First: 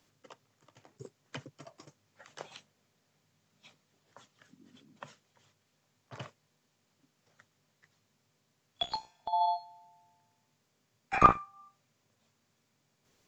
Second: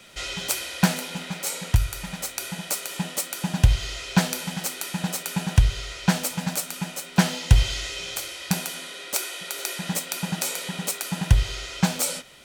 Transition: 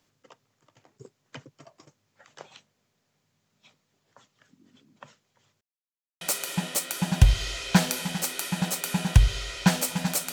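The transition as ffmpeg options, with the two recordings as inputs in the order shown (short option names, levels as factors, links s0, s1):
-filter_complex "[0:a]apad=whole_dur=10.32,atrim=end=10.32,asplit=2[s0][s1];[s0]atrim=end=5.61,asetpts=PTS-STARTPTS,afade=t=out:st=5.606:d=0.004:c=hsin[s2];[s1]atrim=start=5.61:end=6.21,asetpts=PTS-STARTPTS,volume=0[s3];[1:a]atrim=start=2.63:end=6.74,asetpts=PTS-STARTPTS,afade=t=in:d=0.004:c=hsin[s4];[s2][s3][s4]concat=n=3:v=0:a=1"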